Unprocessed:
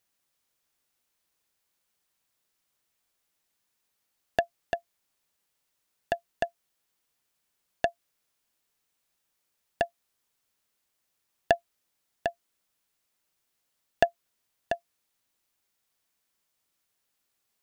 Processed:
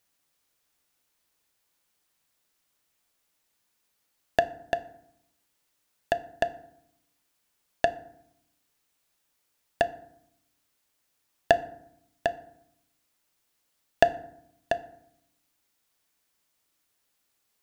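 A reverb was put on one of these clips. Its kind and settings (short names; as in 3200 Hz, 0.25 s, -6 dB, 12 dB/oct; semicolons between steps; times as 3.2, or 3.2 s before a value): FDN reverb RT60 0.74 s, low-frequency decay 1.5×, high-frequency decay 0.55×, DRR 11.5 dB; gain +3 dB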